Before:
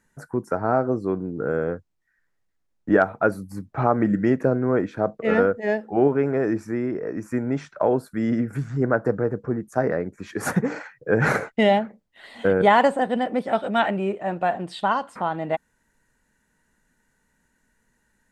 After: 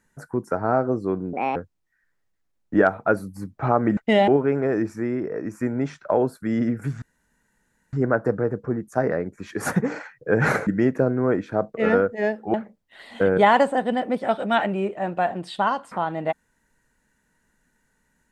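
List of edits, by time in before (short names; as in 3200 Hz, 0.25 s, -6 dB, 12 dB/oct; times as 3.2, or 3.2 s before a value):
1.33–1.71 speed 166%
4.12–5.99 swap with 11.47–11.78
8.73 insert room tone 0.91 s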